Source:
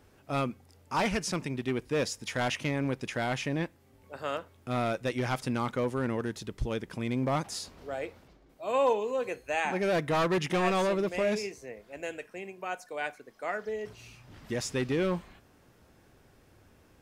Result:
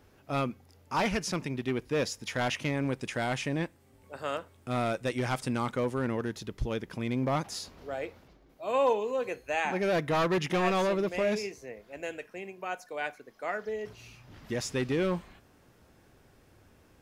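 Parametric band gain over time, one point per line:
parametric band 8,400 Hz 0.29 octaves
0:02.42 −5.5 dB
0:02.99 +5.5 dB
0:05.65 +5.5 dB
0:06.23 −6 dB
0:14.42 −6 dB
0:14.90 0 dB

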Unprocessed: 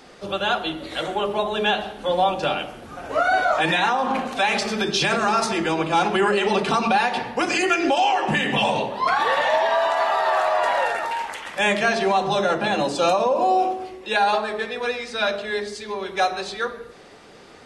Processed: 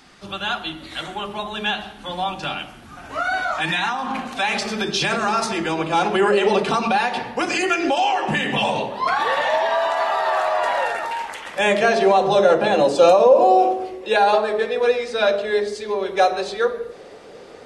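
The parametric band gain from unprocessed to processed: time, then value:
parametric band 500 Hz 0.89 octaves
0:03.94 −13 dB
0:04.69 −1.5 dB
0:05.72 −1.5 dB
0:06.45 +7.5 dB
0:06.82 0 dB
0:11.32 0 dB
0:11.86 +10 dB

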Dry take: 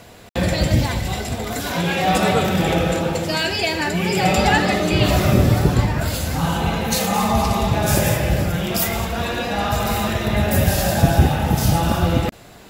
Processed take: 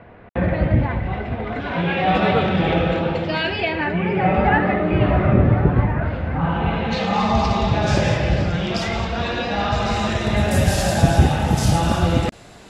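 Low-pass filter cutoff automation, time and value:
low-pass filter 24 dB per octave
0:00.97 2,100 Hz
0:02.29 3,500 Hz
0:03.45 3,500 Hz
0:04.20 2,100 Hz
0:06.38 2,100 Hz
0:07.35 5,300 Hz
0:09.74 5,300 Hz
0:10.48 10,000 Hz

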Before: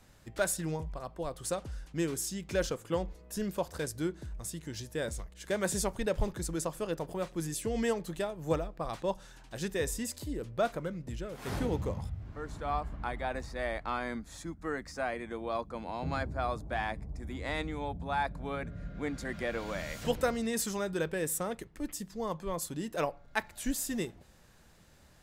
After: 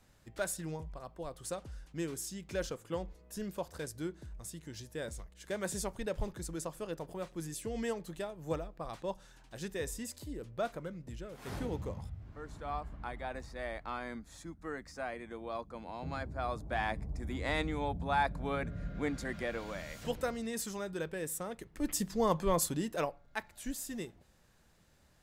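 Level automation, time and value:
0:16.21 −5.5 dB
0:17.00 +1.5 dB
0:18.97 +1.5 dB
0:19.84 −5.5 dB
0:21.55 −5.5 dB
0:21.96 +6 dB
0:22.60 +6 dB
0:23.24 −6.5 dB

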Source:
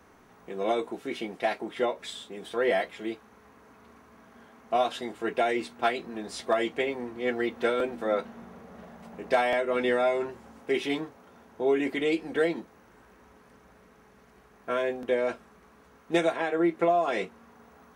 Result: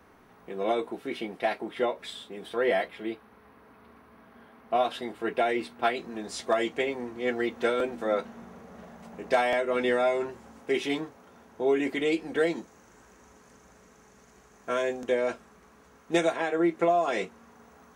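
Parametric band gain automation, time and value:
parametric band 6,800 Hz 0.63 octaves
−6.5 dB
from 0:02.88 −13.5 dB
from 0:04.84 −7 dB
from 0:05.97 +4 dB
from 0:12.47 +14 dB
from 0:15.12 +6.5 dB

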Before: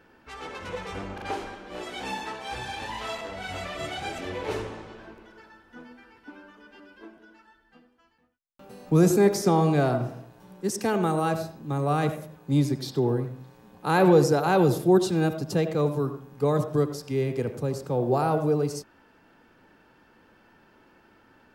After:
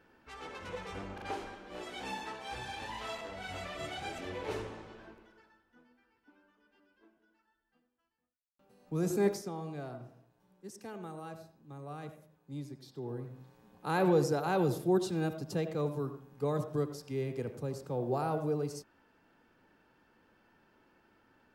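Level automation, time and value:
0:05.07 −7 dB
0:05.82 −19 dB
0:08.75 −19 dB
0:09.29 −8 dB
0:09.49 −19.5 dB
0:12.92 −19.5 dB
0:13.38 −9 dB

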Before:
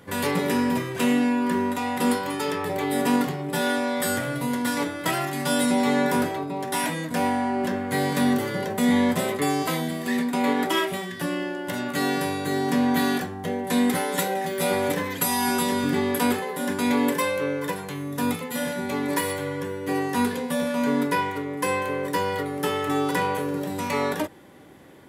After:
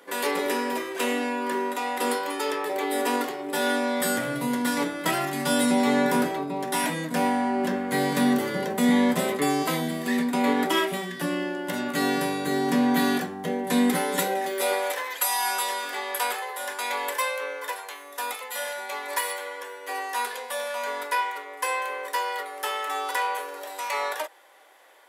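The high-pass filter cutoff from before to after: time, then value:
high-pass filter 24 dB per octave
0:03.34 320 Hz
0:04.18 150 Hz
0:14.08 150 Hz
0:14.94 600 Hz

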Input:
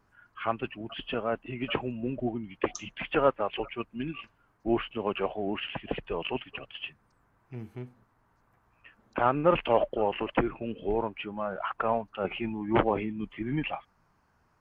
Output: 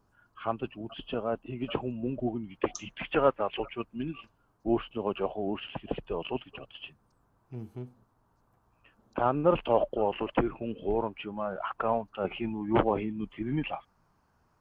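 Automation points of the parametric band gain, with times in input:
parametric band 2,000 Hz 0.95 octaves
0:01.68 −12.5 dB
0:03.01 −2.5 dB
0:03.64 −2.5 dB
0:04.20 −11.5 dB
0:09.79 −11.5 dB
0:10.26 −5.5 dB

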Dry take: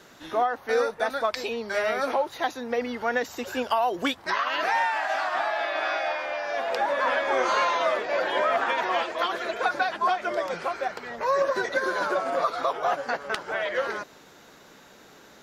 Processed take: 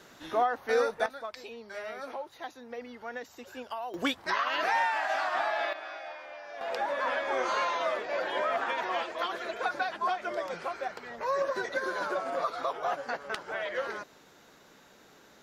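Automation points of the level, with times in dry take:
−2.5 dB
from 0:01.06 −13.5 dB
from 0:03.94 −3 dB
from 0:05.73 −14 dB
from 0:06.61 −6 dB

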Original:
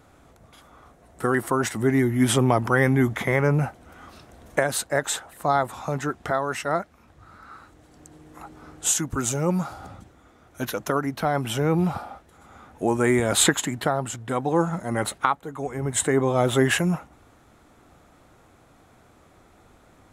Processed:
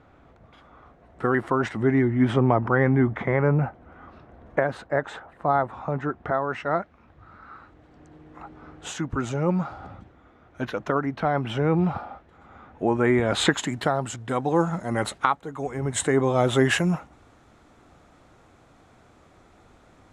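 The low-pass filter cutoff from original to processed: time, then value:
0:01.81 2,800 Hz
0:02.40 1,700 Hz
0:06.29 1,700 Hz
0:06.80 2,800 Hz
0:13.23 2,800 Hz
0:13.72 7,400 Hz

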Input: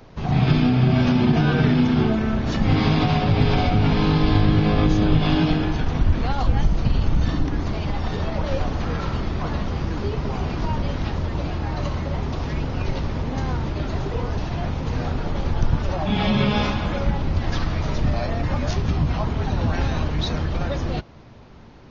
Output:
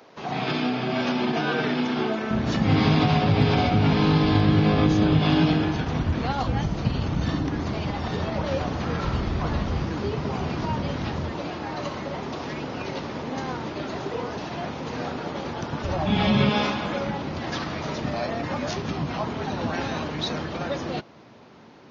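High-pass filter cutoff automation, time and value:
350 Hz
from 0:02.31 100 Hz
from 0:09.04 40 Hz
from 0:09.84 110 Hz
from 0:11.32 230 Hz
from 0:15.84 82 Hz
from 0:16.49 200 Hz

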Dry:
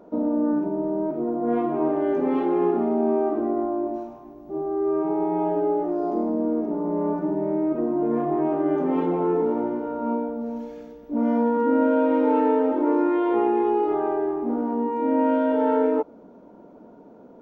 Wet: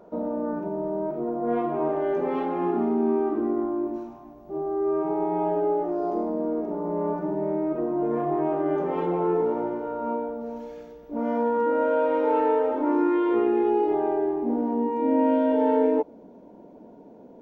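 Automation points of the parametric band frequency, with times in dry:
parametric band −14 dB 0.3 octaves
0:02.32 280 Hz
0:02.98 650 Hz
0:04.04 650 Hz
0:04.52 260 Hz
0:12.68 260 Hz
0:13.02 580 Hz
0:13.94 1,300 Hz

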